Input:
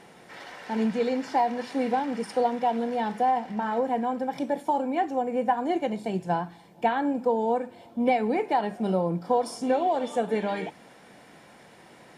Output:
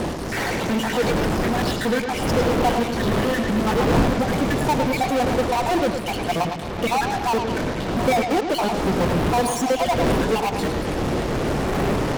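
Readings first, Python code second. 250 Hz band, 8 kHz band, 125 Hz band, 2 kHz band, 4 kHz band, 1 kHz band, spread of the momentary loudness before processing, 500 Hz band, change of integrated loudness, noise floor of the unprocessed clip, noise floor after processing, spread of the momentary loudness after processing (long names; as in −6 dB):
+6.5 dB, can't be measured, +15.0 dB, +11.0 dB, +14.5 dB, +3.5 dB, 6 LU, +5.5 dB, +5.5 dB, −52 dBFS, −27 dBFS, 5 LU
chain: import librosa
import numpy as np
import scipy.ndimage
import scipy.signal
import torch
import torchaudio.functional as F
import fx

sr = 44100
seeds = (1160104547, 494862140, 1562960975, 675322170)

p1 = fx.spec_dropout(x, sr, seeds[0], share_pct=71)
p2 = fx.dmg_wind(p1, sr, seeds[1], corner_hz=440.0, level_db=-35.0)
p3 = fx.fuzz(p2, sr, gain_db=51.0, gate_db=-51.0)
p4 = p2 + (p3 * librosa.db_to_amplitude(-8.5))
p5 = fx.echo_bbd(p4, sr, ms=107, stages=4096, feedback_pct=44, wet_db=-7)
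y = p5 * librosa.db_to_amplitude(-1.0)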